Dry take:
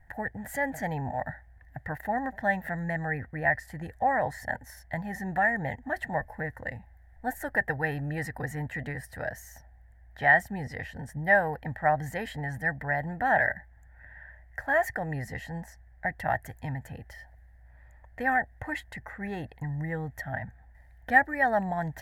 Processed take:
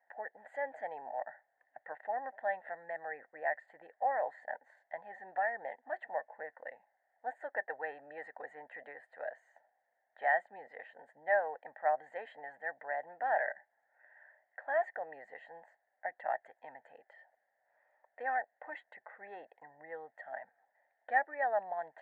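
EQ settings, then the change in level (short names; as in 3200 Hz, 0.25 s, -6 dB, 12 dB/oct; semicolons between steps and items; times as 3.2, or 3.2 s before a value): running mean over 8 samples; ladder high-pass 460 Hz, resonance 40%; air absorption 94 m; -1.5 dB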